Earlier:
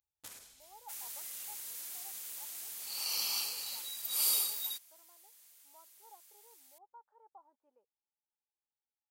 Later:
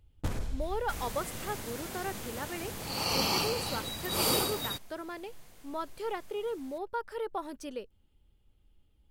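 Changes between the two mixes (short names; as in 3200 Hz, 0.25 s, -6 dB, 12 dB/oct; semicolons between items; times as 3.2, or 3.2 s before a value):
speech: remove ladder low-pass 920 Hz, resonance 75%; master: remove differentiator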